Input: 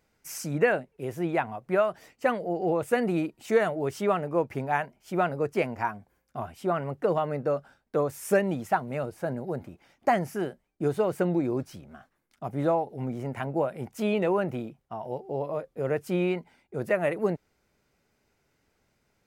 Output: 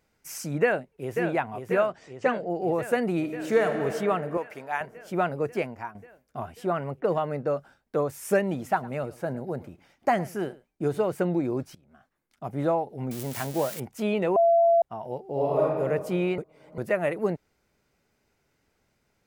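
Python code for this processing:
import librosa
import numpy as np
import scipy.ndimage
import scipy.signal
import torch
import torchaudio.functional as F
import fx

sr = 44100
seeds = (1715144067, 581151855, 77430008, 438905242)

y = fx.echo_throw(x, sr, start_s=0.62, length_s=0.58, ms=540, feedback_pct=75, wet_db=-6.5)
y = fx.steep_lowpass(y, sr, hz=8000.0, slope=36, at=(1.87, 2.5))
y = fx.reverb_throw(y, sr, start_s=3.18, length_s=0.56, rt60_s=2.9, drr_db=4.0)
y = fx.highpass(y, sr, hz=980.0, slope=6, at=(4.37, 4.81))
y = fx.env_lowpass(y, sr, base_hz=320.0, full_db=-26.5, at=(6.99, 7.51), fade=0.02)
y = fx.echo_single(y, sr, ms=107, db=-20.0, at=(8.41, 11.07))
y = fx.crossing_spikes(y, sr, level_db=-24.0, at=(13.11, 13.8))
y = fx.reverb_throw(y, sr, start_s=15.32, length_s=0.47, rt60_s=1.6, drr_db=-7.0)
y = fx.edit(y, sr, fx.fade_out_to(start_s=5.46, length_s=0.49, floor_db=-11.5),
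    fx.fade_in_from(start_s=11.75, length_s=0.74, floor_db=-19.5),
    fx.bleep(start_s=14.36, length_s=0.46, hz=676.0, db=-16.0),
    fx.reverse_span(start_s=16.38, length_s=0.4), tone=tone)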